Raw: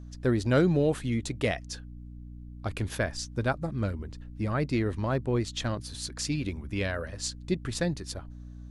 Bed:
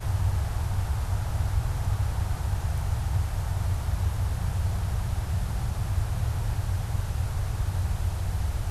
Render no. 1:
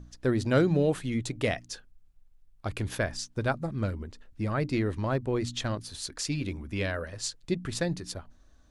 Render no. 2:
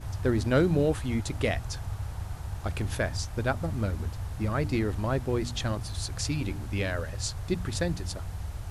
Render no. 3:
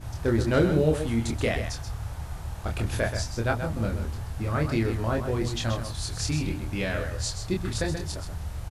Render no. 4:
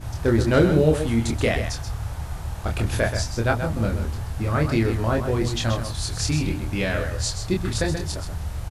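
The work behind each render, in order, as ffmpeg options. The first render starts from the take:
-af "bandreject=f=60:t=h:w=4,bandreject=f=120:t=h:w=4,bandreject=f=180:t=h:w=4,bandreject=f=240:t=h:w=4,bandreject=f=300:t=h:w=4"
-filter_complex "[1:a]volume=-8dB[a];[0:a][a]amix=inputs=2:normalize=0"
-filter_complex "[0:a]asplit=2[a][b];[b]adelay=26,volume=-3.5dB[c];[a][c]amix=inputs=2:normalize=0,aecho=1:1:130:0.376"
-af "volume=4.5dB"

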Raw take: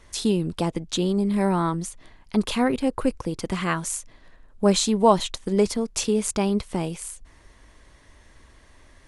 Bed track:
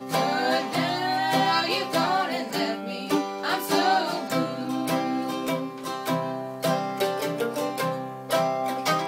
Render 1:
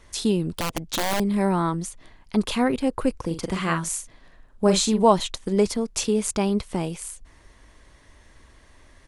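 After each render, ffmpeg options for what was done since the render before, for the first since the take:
-filter_complex "[0:a]asettb=1/sr,asplit=3[a][b][c];[a]atrim=end=0.514[d];[b]atrim=start=0.51:end=1.2,asetpts=PTS-STARTPTS,afade=t=in:d=0.004:c=qsin,afade=t=out:st=0.686:d=0.004:c=qsin,aeval=exprs='(mod(7.94*val(0)+1,2)-1)/7.94':c=same[e];[c]atrim=start=1.196[f];[d][e]acrossfade=d=0.004:c1=hsin:c2=qsin[g];[g][f]acrossfade=d=0.004:c1=qsin:c2=hsin,asplit=3[h][i][j];[h]afade=t=out:st=3.22:d=0.02[k];[i]asplit=2[l][m];[m]adelay=42,volume=-8dB[n];[l][n]amix=inputs=2:normalize=0,afade=t=in:st=3.22:d=0.02,afade=t=out:st=5.03:d=0.02[o];[j]afade=t=in:st=5.03:d=0.02[p];[k][o][p]amix=inputs=3:normalize=0"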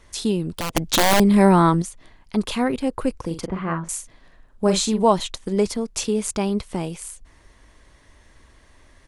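-filter_complex "[0:a]asettb=1/sr,asplit=3[a][b][c];[a]atrim=end=3.464[d];[b]atrim=start=3.46:end=3.89,asetpts=PTS-STARTPTS,afade=t=in:d=0.004:c=qsin,afade=t=out:st=0.426:d=0.004:c=qsin,lowpass=1.4k[e];[c]atrim=start=3.886[f];[d][e]acrossfade=d=0.004:c1=hsin:c2=qsin[g];[g][f]acrossfade=d=0.004:c1=qsin:c2=hsin,asplit=3[h][i][j];[h]atrim=end=0.752[k];[i]atrim=start=0.748:end=1.822,asetpts=PTS-STARTPTS,volume=8dB[l];[j]atrim=start=1.818[m];[k][l]acrossfade=d=0.004:c1=hsin:c2=hsin[n];[n][m]acrossfade=d=0.004:c1=hsin:c2=hsin"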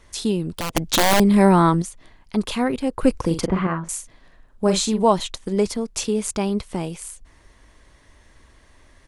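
-filter_complex "[0:a]asettb=1/sr,asplit=3[a][b][c];[a]atrim=end=3.034[d];[b]atrim=start=3.03:end=3.67,asetpts=PTS-STARTPTS,afade=t=in:d=0.004:c=qsin,afade=t=out:st=0.636:d=0.004:c=qsin,acontrast=67[e];[c]atrim=start=3.666[f];[d][e]acrossfade=d=0.004:c1=hsin:c2=qsin[g];[g][f]acrossfade=d=0.004:c1=qsin:c2=hsin"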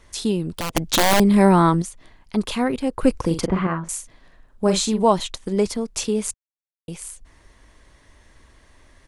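-filter_complex "[0:a]asplit=3[a][b][c];[a]atrim=end=6.34,asetpts=PTS-STARTPTS,afade=t=out:st=6.336:d=0.004:c=hsin[d];[b]atrim=start=6.34:end=6.88,asetpts=PTS-STARTPTS,volume=0[e];[c]atrim=start=6.88,asetpts=PTS-STARTPTS,afade=t=in:d=0.004:c=hsin[f];[d][e][f]concat=n=3:v=0:a=1"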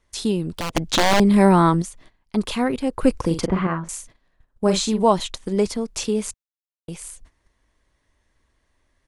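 -filter_complex "[0:a]acrossover=split=7500[a][b];[b]acompressor=threshold=-34dB:ratio=4:attack=1:release=60[c];[a][c]amix=inputs=2:normalize=0,agate=range=-15dB:threshold=-44dB:ratio=16:detection=peak"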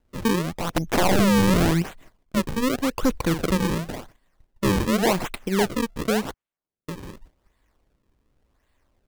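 -af "acrusher=samples=36:mix=1:aa=0.000001:lfo=1:lforange=57.6:lforate=0.89,asoftclip=type=hard:threshold=-15.5dB"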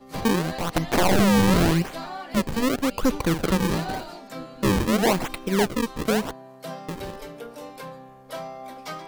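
-filter_complex "[1:a]volume=-11.5dB[a];[0:a][a]amix=inputs=2:normalize=0"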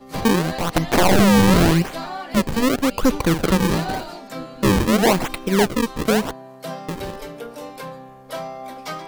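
-af "volume=4.5dB"

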